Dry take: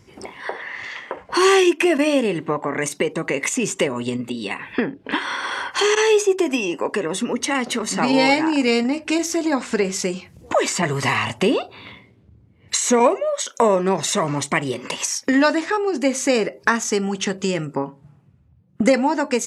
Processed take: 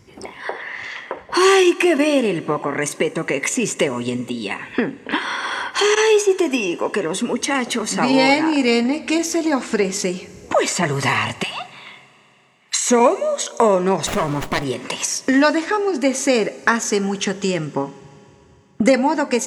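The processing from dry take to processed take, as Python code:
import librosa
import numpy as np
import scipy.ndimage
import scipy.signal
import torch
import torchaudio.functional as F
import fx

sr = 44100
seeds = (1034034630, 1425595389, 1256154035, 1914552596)

y = fx.ellip_highpass(x, sr, hz=730.0, order=4, stop_db=40, at=(11.42, 12.85), fade=0.02)
y = fx.rev_schroeder(y, sr, rt60_s=3.5, comb_ms=30, drr_db=19.0)
y = fx.running_max(y, sr, window=9, at=(14.06, 14.63), fade=0.02)
y = y * librosa.db_to_amplitude(1.5)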